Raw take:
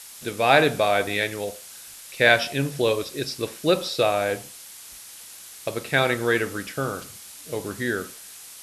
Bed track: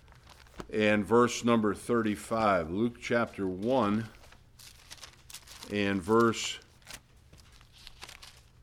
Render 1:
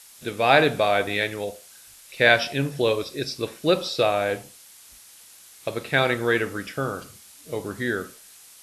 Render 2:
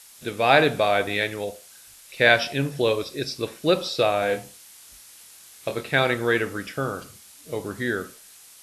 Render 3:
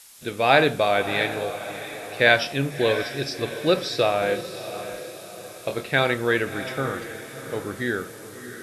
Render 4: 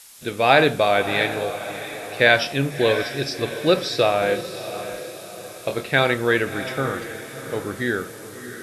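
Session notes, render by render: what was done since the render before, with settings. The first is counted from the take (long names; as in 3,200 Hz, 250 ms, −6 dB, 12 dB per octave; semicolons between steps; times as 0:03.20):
noise reduction from a noise print 6 dB
0:04.20–0:05.81: double-tracking delay 24 ms −6 dB
feedback delay with all-pass diffusion 667 ms, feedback 46%, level −11.5 dB
level +2.5 dB; brickwall limiter −2 dBFS, peak gain reduction 2 dB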